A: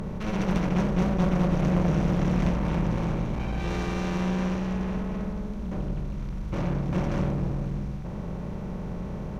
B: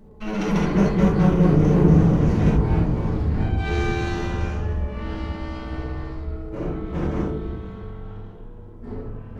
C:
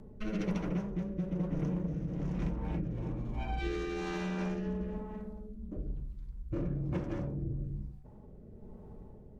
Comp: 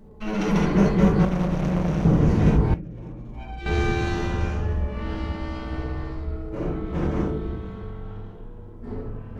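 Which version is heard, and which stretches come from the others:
B
0:01.25–0:02.05: punch in from A
0:02.74–0:03.66: punch in from C

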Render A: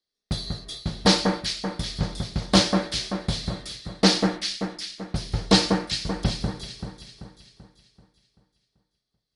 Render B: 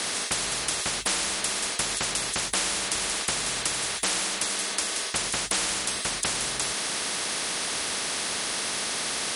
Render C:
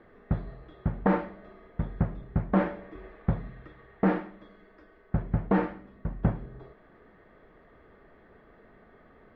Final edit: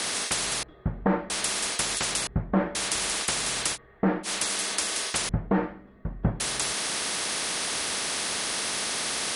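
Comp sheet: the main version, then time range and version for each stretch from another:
B
0:00.63–0:01.30: punch in from C
0:02.27–0:02.75: punch in from C
0:03.75–0:04.26: punch in from C, crossfade 0.06 s
0:05.29–0:06.40: punch in from C
not used: A

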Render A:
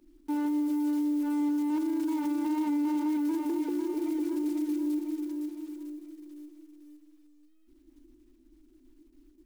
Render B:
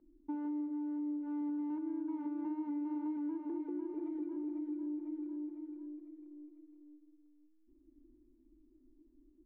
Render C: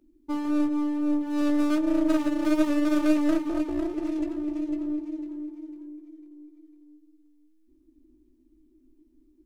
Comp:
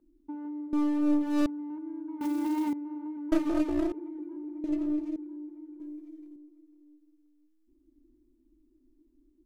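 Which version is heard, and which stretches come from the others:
B
0:00.73–0:01.46: punch in from C
0:02.21–0:02.73: punch in from A
0:03.32–0:03.92: punch in from C
0:04.64–0:05.16: punch in from C
0:05.80–0:06.36: punch in from C

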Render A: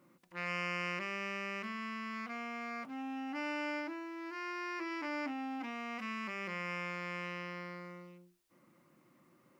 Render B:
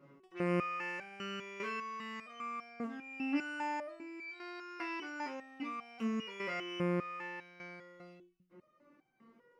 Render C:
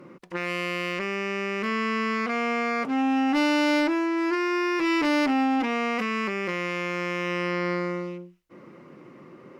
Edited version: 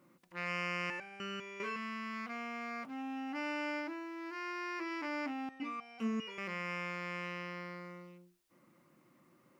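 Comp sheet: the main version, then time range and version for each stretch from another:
A
0:00.90–0:01.76: punch in from B
0:05.49–0:06.38: punch in from B
not used: C

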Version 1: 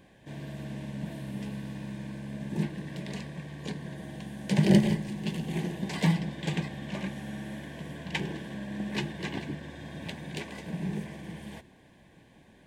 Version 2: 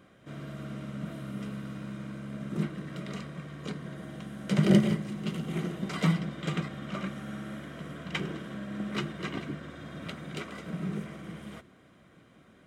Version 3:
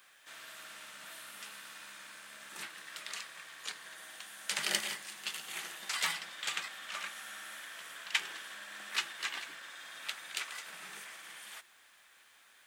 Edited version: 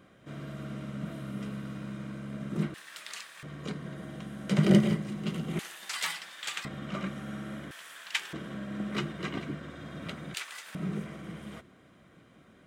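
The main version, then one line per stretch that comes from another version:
2
0:02.74–0:03.43: punch in from 3
0:05.59–0:06.65: punch in from 3
0:07.71–0:08.33: punch in from 3
0:10.34–0:10.75: punch in from 3
not used: 1

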